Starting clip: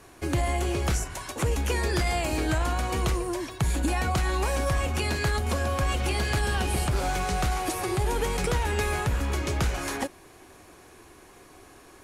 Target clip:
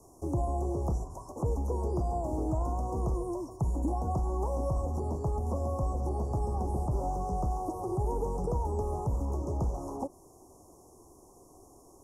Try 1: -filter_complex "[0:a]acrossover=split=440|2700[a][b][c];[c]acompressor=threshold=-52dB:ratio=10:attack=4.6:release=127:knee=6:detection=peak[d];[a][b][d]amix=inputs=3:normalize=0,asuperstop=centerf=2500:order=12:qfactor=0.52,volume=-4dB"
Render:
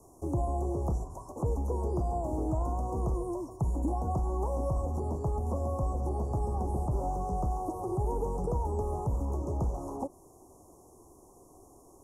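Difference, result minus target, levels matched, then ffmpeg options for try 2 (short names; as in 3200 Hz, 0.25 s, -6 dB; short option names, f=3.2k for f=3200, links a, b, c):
4000 Hz band -4.5 dB
-filter_complex "[0:a]acrossover=split=440|2700[a][b][c];[c]acompressor=threshold=-52dB:ratio=10:attack=4.6:release=127:knee=6:detection=peak[d];[a][b][d]amix=inputs=3:normalize=0,asuperstop=centerf=2500:order=12:qfactor=0.52,equalizer=f=5.2k:w=2.4:g=5,volume=-4dB"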